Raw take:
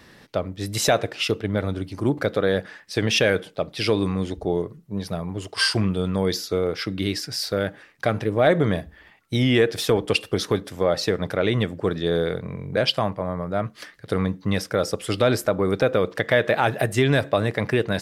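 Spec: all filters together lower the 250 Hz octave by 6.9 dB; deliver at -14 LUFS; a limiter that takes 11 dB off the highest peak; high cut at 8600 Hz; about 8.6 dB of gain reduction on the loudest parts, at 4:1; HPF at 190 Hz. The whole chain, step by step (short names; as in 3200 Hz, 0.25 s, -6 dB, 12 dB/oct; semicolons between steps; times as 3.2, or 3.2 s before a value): HPF 190 Hz; LPF 8600 Hz; bell 250 Hz -7.5 dB; compressor 4:1, threshold -25 dBFS; gain +19.5 dB; limiter -2.5 dBFS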